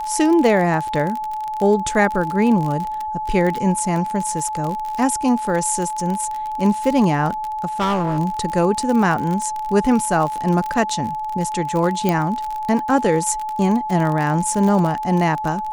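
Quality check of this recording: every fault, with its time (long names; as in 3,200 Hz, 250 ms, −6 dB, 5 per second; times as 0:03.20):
surface crackle 40 per second −22 dBFS
whistle 860 Hz −23 dBFS
0:07.79–0:08.19: clipping −16 dBFS
0:12.09: click −5 dBFS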